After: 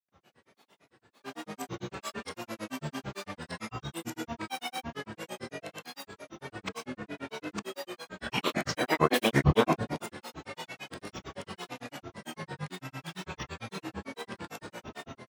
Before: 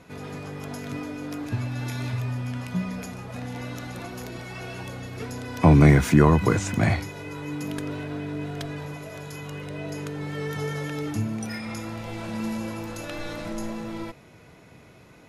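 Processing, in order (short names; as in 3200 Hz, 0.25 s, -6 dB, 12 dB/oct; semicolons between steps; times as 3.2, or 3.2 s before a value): whole clip reversed; gate -37 dBFS, range -8 dB; HPF 160 Hz 12 dB/oct; low shelf 470 Hz -6.5 dB; digital reverb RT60 0.89 s, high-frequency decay 0.95×, pre-delay 10 ms, DRR 1 dB; grains 0.1 s, grains 8.9/s, pitch spread up and down by 12 st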